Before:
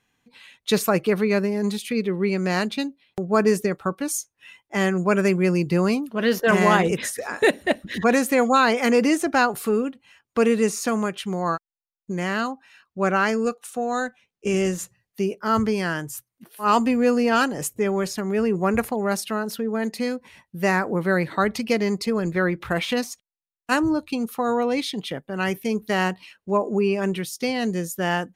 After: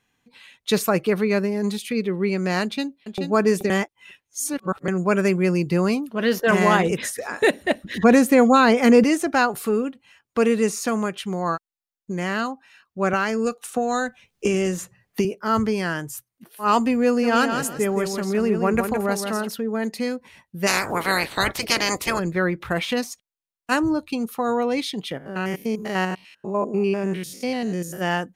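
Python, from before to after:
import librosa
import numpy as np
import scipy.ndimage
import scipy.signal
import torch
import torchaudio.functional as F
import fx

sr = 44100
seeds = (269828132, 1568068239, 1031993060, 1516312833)

y = fx.echo_throw(x, sr, start_s=2.63, length_s=0.56, ms=430, feedback_pct=25, wet_db=-7.0)
y = fx.low_shelf(y, sr, hz=420.0, db=9.0, at=(8.03, 9.04))
y = fx.band_squash(y, sr, depth_pct=100, at=(13.13, 15.25))
y = fx.echo_feedback(y, sr, ms=167, feedback_pct=22, wet_db=-6.5, at=(17.22, 19.47), fade=0.02)
y = fx.spec_clip(y, sr, under_db=28, at=(20.66, 22.18), fade=0.02)
y = fx.spec_steps(y, sr, hold_ms=100, at=(25.17, 28.0), fade=0.02)
y = fx.edit(y, sr, fx.reverse_span(start_s=3.7, length_s=1.18), tone=tone)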